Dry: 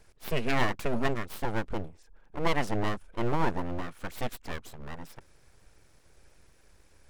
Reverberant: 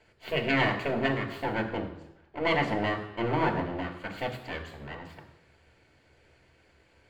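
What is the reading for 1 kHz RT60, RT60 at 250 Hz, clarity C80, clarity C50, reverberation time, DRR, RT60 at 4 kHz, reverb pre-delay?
0.85 s, 0.85 s, 11.5 dB, 9.5 dB, 0.85 s, 2.5 dB, 0.90 s, 3 ms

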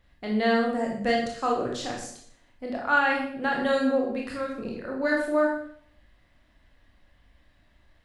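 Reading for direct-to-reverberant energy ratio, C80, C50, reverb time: -1.5 dB, 8.0 dB, 4.0 dB, 0.60 s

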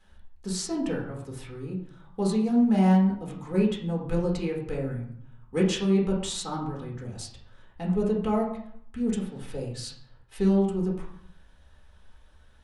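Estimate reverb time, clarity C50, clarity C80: 0.65 s, 6.0 dB, 9.0 dB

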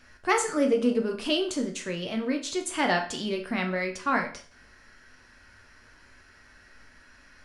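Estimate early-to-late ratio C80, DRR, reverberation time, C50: 15.0 dB, 2.5 dB, 0.45 s, 10.5 dB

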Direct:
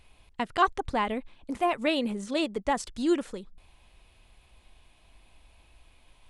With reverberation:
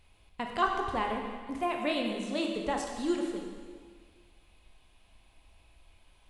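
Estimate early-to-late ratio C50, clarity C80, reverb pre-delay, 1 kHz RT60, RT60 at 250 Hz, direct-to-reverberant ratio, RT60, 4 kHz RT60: 3.5 dB, 4.5 dB, 8 ms, 1.7 s, 1.7 s, 1.0 dB, 1.7 s, 1.6 s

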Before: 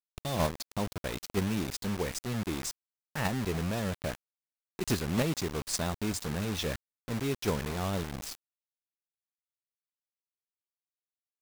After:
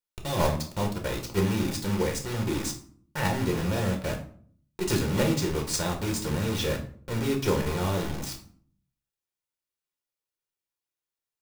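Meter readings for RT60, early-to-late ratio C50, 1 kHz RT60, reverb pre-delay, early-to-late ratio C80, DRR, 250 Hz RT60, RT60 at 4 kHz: 0.55 s, 9.5 dB, 0.50 s, 6 ms, 14.0 dB, 1.0 dB, 0.75 s, 0.35 s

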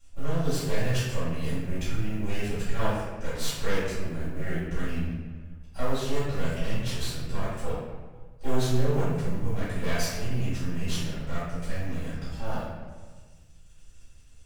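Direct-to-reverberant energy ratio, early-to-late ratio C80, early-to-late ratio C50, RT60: -15.5 dB, 1.5 dB, -2.0 dB, 1.4 s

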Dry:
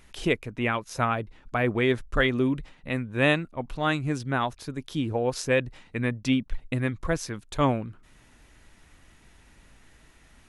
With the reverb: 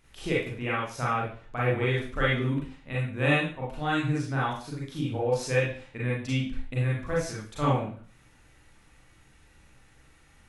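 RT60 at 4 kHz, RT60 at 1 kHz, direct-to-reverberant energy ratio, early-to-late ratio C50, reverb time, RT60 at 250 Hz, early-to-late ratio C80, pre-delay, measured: 0.40 s, 0.45 s, -7.0 dB, 1.0 dB, 0.45 s, 0.45 s, 7.5 dB, 33 ms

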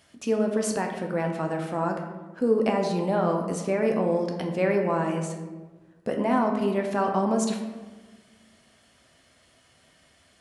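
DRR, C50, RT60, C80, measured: 2.0 dB, 5.5 dB, 1.3 s, 7.5 dB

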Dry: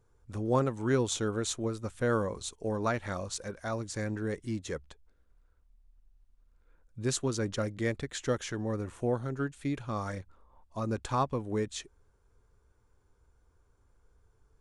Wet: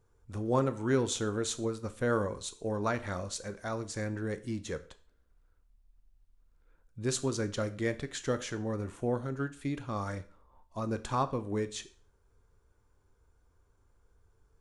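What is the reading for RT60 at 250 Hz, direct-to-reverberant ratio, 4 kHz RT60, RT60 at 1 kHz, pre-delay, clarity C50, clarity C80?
0.45 s, 11.0 dB, 0.40 s, 0.45 s, 10 ms, 16.5 dB, 20.5 dB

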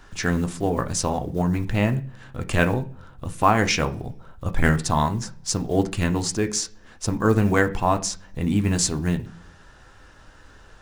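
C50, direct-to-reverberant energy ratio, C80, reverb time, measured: 16.5 dB, 6.5 dB, 22.0 dB, no single decay rate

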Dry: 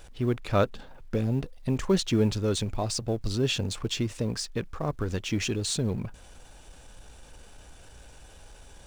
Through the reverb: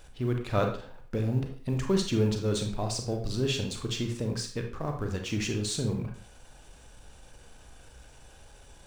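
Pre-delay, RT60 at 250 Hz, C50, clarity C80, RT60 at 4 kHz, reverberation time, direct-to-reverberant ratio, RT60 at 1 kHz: 29 ms, 0.50 s, 7.0 dB, 12.0 dB, 0.40 s, 0.50 s, 3.5 dB, 0.50 s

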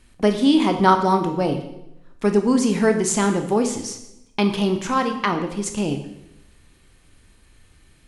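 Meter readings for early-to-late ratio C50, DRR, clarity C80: 9.0 dB, 5.5 dB, 11.5 dB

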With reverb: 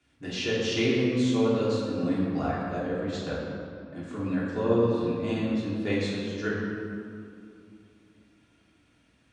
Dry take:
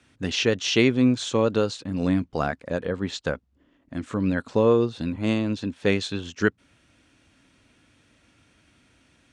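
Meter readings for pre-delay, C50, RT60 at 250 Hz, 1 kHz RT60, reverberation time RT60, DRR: 3 ms, -1.0 dB, 3.3 s, 2.5 s, 2.5 s, -8.0 dB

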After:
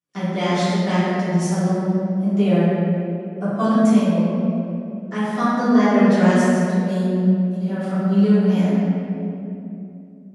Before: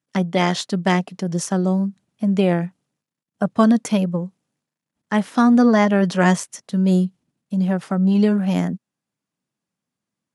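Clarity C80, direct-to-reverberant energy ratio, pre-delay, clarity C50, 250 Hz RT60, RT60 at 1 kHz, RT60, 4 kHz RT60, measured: -2.0 dB, -14.0 dB, 3 ms, -4.0 dB, 3.7 s, 2.5 s, 2.8 s, 1.6 s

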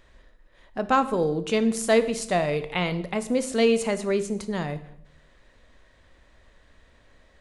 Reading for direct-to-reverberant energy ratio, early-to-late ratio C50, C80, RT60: 10.5 dB, 14.5 dB, 17.0 dB, 0.75 s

